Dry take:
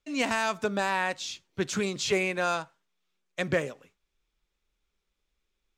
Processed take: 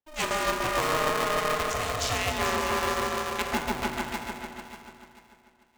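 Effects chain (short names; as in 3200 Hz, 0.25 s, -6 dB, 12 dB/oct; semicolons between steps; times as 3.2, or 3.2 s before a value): Wiener smoothing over 41 samples; HPF 480 Hz 12 dB/oct; bell 850 Hz +14 dB 0.66 oct; repeats that get brighter 0.147 s, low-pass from 750 Hz, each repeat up 2 oct, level 0 dB; compressor 3:1, threshold -25 dBFS, peak gain reduction 7.5 dB; high shelf 4400 Hz +10.5 dB; Schroeder reverb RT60 1.4 s, combs from 25 ms, DRR 5 dB; polarity switched at an audio rate 310 Hz; gain -1.5 dB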